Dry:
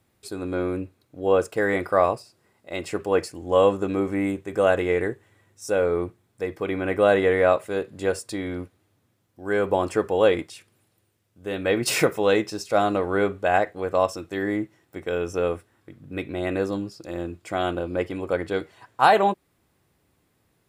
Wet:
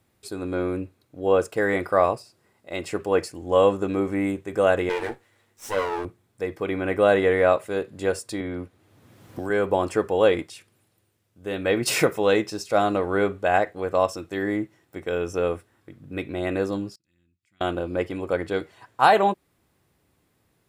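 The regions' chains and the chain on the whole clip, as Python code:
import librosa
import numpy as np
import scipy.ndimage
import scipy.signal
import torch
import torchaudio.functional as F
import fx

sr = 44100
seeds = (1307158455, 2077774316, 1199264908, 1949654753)

y = fx.chain(x, sr, fx.lower_of_two(delay_ms=8.5),
    fx.low_shelf(hz=160.0, db=-11.5),
    fx.doubler(ms=21.0, db=-12.0), at=(4.89, 6.05))
y = fx.chain(y, sr, fx.high_shelf(hz=4700.0, db=-5.0),
    fx.band_squash(depth_pct=100), at=(8.4, 9.5))
y = fx.chain(y, sr, fx.curve_eq(hz=(220.0, 610.0, 2100.0), db=(0, -25, 2)),
    fx.gate_flip(shuts_db=-40.0, range_db=-31), at=(16.95, 17.61))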